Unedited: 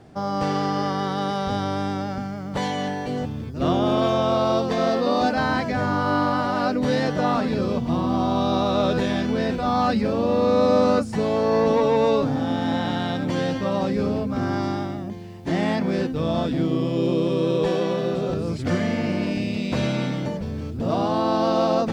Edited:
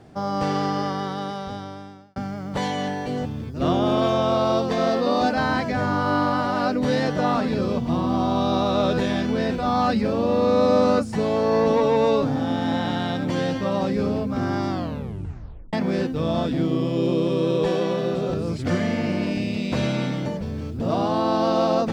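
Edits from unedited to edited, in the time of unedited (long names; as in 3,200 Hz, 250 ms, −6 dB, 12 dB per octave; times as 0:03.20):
0:00.65–0:02.16: fade out
0:14.69: tape stop 1.04 s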